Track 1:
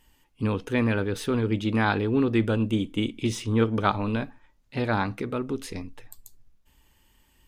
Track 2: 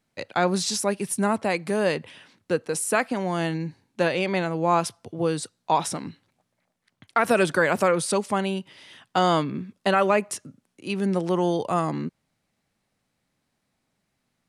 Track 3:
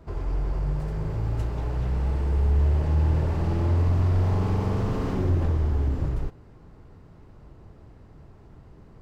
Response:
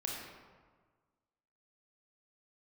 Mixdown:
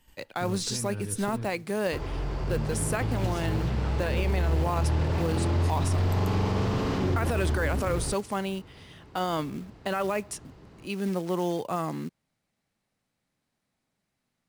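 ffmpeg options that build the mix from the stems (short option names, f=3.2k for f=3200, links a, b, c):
-filter_complex "[0:a]acompressor=threshold=-31dB:ratio=6,agate=range=-7dB:threshold=-59dB:ratio=16:detection=peak,acrossover=split=150[a][b];[b]acompressor=threshold=-46dB:ratio=5[c];[a][c]amix=inputs=2:normalize=0,volume=2.5dB,asplit=3[d][e][f];[d]atrim=end=1.46,asetpts=PTS-STARTPTS,afade=t=out:st=1.456:d=0.004:c=hsin[g];[e]atrim=start=1.46:end=2.43,asetpts=PTS-STARTPTS,volume=0[h];[f]atrim=start=2.43,asetpts=PTS-STARTPTS,afade=t=in:d=0.004:c=hsin[i];[g][h][i]concat=n=3:v=0:a=1,asplit=2[j][k];[k]volume=-10dB[l];[1:a]acrusher=bits=5:mode=log:mix=0:aa=0.000001,volume=-5dB[m];[2:a]highpass=f=92:p=1,equalizer=f=3.8k:t=o:w=1.9:g=7.5,adelay=1850,volume=1dB[n];[3:a]atrim=start_sample=2205[o];[l][o]afir=irnorm=-1:irlink=0[p];[j][m][n][p]amix=inputs=4:normalize=0,alimiter=limit=-17.5dB:level=0:latency=1:release=23"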